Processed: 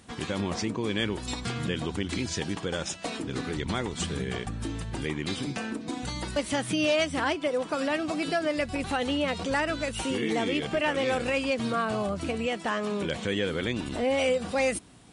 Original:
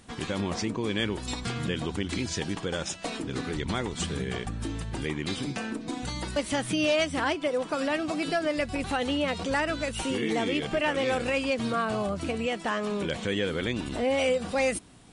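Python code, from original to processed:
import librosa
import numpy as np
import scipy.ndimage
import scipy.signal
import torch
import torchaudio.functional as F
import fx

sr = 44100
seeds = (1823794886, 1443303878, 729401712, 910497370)

y = scipy.signal.sosfilt(scipy.signal.butter(2, 40.0, 'highpass', fs=sr, output='sos'), x)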